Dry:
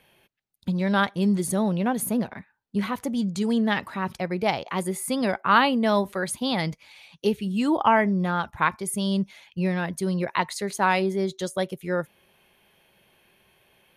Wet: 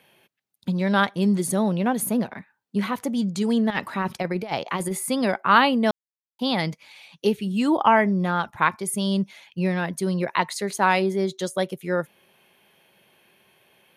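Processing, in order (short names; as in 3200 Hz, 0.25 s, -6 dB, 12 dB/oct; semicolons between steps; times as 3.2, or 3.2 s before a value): HPF 130 Hz 12 dB/oct; 3.7–4.99 negative-ratio compressor -27 dBFS, ratio -0.5; 5.91–6.39 mute; gain +2 dB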